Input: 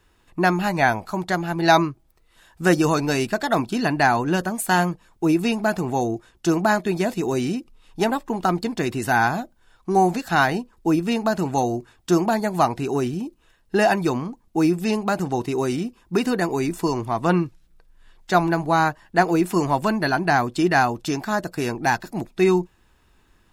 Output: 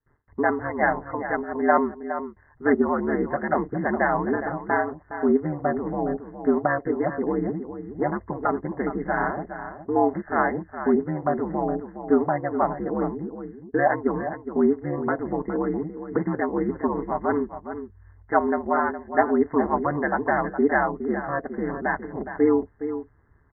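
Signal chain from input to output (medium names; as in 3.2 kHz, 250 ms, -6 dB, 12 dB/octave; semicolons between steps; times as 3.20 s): Chebyshev low-pass 2 kHz, order 10; gate with hold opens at -52 dBFS; comb 3 ms, depth 97%; ring modulator 74 Hz; echo from a far wall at 71 m, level -10 dB; trim -3 dB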